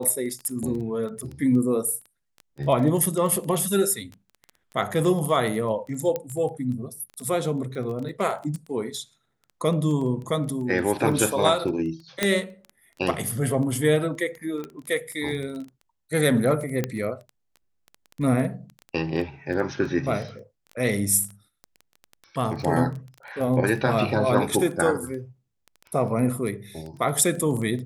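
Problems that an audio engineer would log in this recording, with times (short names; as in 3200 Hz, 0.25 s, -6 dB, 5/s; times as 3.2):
crackle 11/s -31 dBFS
6.16 pop -14 dBFS
12.23 pop -5 dBFS
14.64 pop -21 dBFS
16.84 pop -11 dBFS
22.62 gap 2.8 ms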